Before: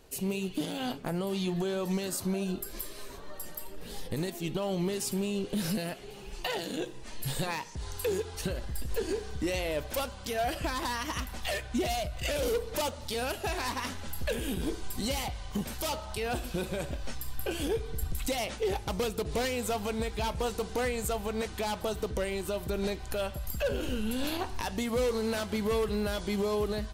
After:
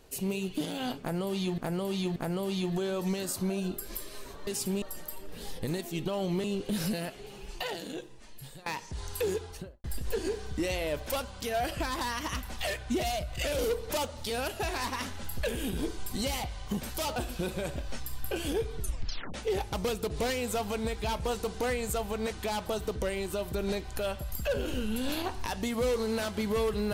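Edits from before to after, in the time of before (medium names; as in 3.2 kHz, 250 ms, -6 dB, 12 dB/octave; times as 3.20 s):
1.00–1.58 s: loop, 3 plays
4.93–5.28 s: move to 3.31 s
6.19–7.50 s: fade out, to -21 dB
8.18–8.68 s: studio fade out
16.00–16.31 s: delete
17.92 s: tape stop 0.57 s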